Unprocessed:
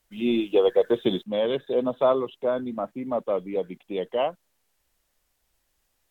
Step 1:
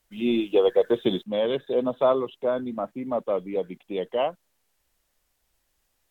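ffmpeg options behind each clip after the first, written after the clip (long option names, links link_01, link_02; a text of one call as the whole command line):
ffmpeg -i in.wav -af anull out.wav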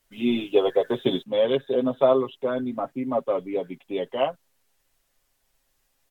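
ffmpeg -i in.wav -af "aecho=1:1:7.4:0.7" out.wav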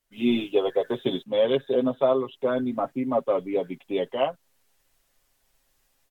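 ffmpeg -i in.wav -af "dynaudnorm=framelen=110:gausssize=3:maxgain=11dB,volume=-9dB" out.wav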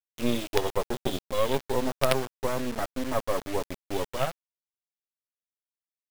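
ffmpeg -i in.wav -af "acrusher=bits=3:dc=4:mix=0:aa=0.000001" out.wav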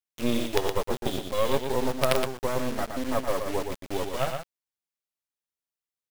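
ffmpeg -i in.wav -af "aecho=1:1:118:0.501" out.wav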